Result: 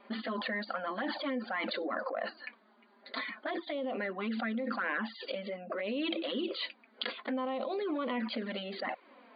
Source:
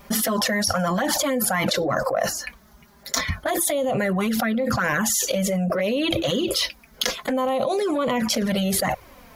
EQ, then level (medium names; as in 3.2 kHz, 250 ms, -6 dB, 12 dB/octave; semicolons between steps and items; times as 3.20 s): dynamic bell 610 Hz, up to -6 dB, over -36 dBFS, Q 0.8; brick-wall FIR band-pass 210–4800 Hz; distance through air 200 m; -7.0 dB